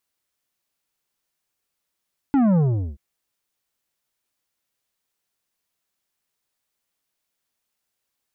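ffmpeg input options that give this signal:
-f lavfi -i "aevalsrc='0.168*clip((0.63-t)/0.4,0,1)*tanh(2.99*sin(2*PI*290*0.63/log(65/290)*(exp(log(65/290)*t/0.63)-1)))/tanh(2.99)':d=0.63:s=44100"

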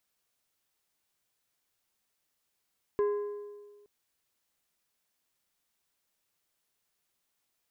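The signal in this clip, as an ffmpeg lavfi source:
-f lavfi -i "aevalsrc='0.0708*pow(10,-3*t/1.54)*sin(2*PI*412*t)+0.0178*pow(10,-3*t/1.17)*sin(2*PI*1030*t)+0.00447*pow(10,-3*t/1.016)*sin(2*PI*1648*t)+0.00112*pow(10,-3*t/0.95)*sin(2*PI*2060*t)+0.000282*pow(10,-3*t/0.878)*sin(2*PI*2678*t)':d=0.87:s=44100"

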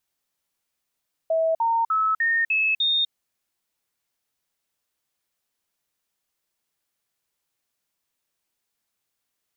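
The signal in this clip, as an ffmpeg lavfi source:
-f lavfi -i "aevalsrc='0.119*clip(min(mod(t,0.3),0.25-mod(t,0.3))/0.005,0,1)*sin(2*PI*649*pow(2,floor(t/0.3)/2)*mod(t,0.3))':d=1.8:s=44100"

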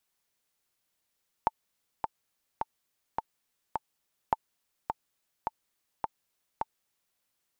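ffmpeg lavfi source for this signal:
-f lavfi -i "aevalsrc='pow(10,(-10.5-6*gte(mod(t,5*60/105),60/105))/20)*sin(2*PI*885*mod(t,60/105))*exp(-6.91*mod(t,60/105)/0.03)':d=5.71:s=44100"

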